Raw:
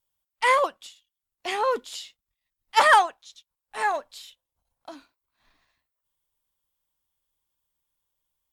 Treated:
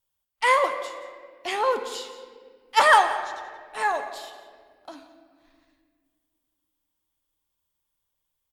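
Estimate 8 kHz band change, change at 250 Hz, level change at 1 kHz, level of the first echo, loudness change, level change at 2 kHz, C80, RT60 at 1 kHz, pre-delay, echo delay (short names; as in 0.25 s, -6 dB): +0.5 dB, +1.0 dB, +0.5 dB, -17.0 dB, 0.0 dB, +1.0 dB, 10.0 dB, 1.5 s, 10 ms, 0.177 s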